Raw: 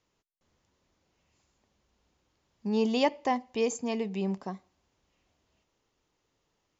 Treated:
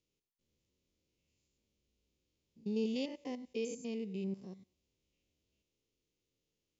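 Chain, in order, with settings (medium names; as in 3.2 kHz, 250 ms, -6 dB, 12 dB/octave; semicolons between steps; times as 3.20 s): spectrogram pixelated in time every 100 ms; high-order bell 1.1 kHz -15 dB; trim -7 dB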